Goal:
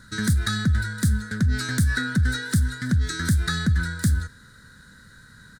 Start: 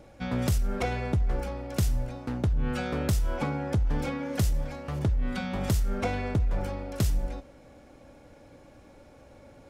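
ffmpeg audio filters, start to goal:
-af "firequalizer=gain_entry='entry(130,0);entry(210,-15);entry(510,-25);entry(920,13);entry(1500,-19);entry(2200,5);entry(3300,2);entry(4900,7);entry(8300,-8)':delay=0.05:min_phase=1,asetrate=76440,aresample=44100,volume=5.5dB"

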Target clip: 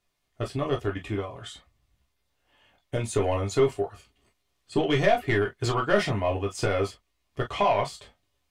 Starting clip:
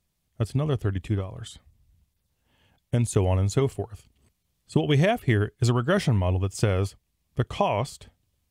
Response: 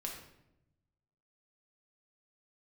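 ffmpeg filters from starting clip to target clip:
-filter_complex "[0:a]asplit=2[a][b];[b]highpass=f=720:p=1,volume=16dB,asoftclip=type=tanh:threshold=-6.5dB[c];[a][c]amix=inputs=2:normalize=0,lowpass=f=2.7k:p=1,volume=-6dB[d];[1:a]atrim=start_sample=2205,atrim=end_sample=3969,asetrate=79380,aresample=44100[e];[d][e]afir=irnorm=-1:irlink=0,volume=2.5dB"

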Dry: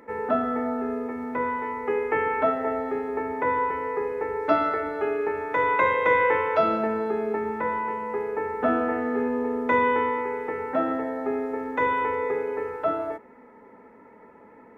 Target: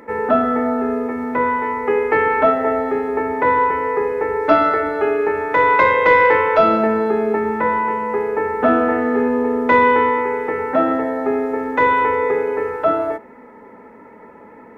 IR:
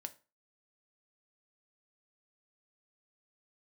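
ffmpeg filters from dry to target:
-filter_complex "[0:a]acontrast=78,asplit=2[a][b];[1:a]atrim=start_sample=2205[c];[b][c]afir=irnorm=-1:irlink=0,volume=-5dB[d];[a][d]amix=inputs=2:normalize=0,volume=-1dB"

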